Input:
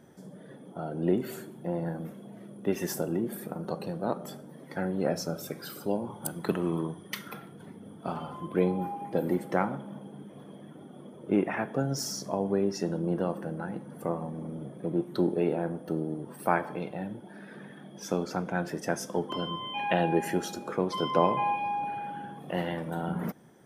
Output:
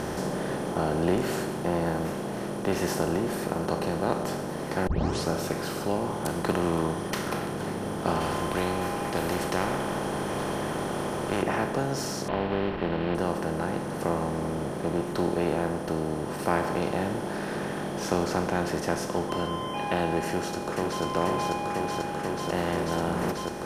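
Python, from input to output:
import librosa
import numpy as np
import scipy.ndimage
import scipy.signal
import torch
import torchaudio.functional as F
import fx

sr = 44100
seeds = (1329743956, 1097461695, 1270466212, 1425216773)

y = fx.spectral_comp(x, sr, ratio=2.0, at=(8.2, 11.41), fade=0.02)
y = fx.cvsd(y, sr, bps=16000, at=(12.28, 13.15))
y = fx.echo_throw(y, sr, start_s=20.27, length_s=0.76, ms=490, feedback_pct=75, wet_db=-3.5)
y = fx.edit(y, sr, fx.tape_start(start_s=4.87, length_s=0.42), tone=tone)
y = fx.bin_compress(y, sr, power=0.4)
y = fx.rider(y, sr, range_db=10, speed_s=2.0)
y = scipy.signal.sosfilt(scipy.signal.butter(2, 12000.0, 'lowpass', fs=sr, output='sos'), y)
y = y * librosa.db_to_amplitude(-4.5)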